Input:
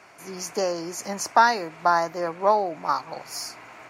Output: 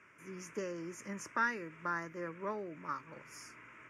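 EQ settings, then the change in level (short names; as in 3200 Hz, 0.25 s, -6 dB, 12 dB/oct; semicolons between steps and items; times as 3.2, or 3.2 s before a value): dynamic EQ 910 Hz, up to -5 dB, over -31 dBFS, Q 1.1; air absorption 65 m; fixed phaser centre 1800 Hz, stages 4; -7.0 dB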